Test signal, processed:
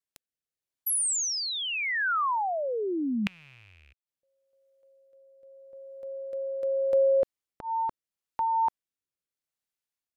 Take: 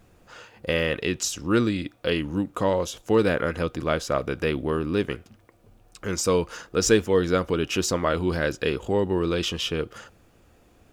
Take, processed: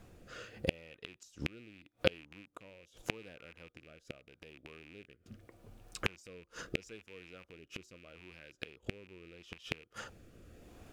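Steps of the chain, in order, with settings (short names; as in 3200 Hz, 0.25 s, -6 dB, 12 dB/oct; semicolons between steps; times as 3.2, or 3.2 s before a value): rattling part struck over -33 dBFS, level -11 dBFS; flipped gate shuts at -16 dBFS, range -32 dB; rotary speaker horn 0.8 Hz; gain +2 dB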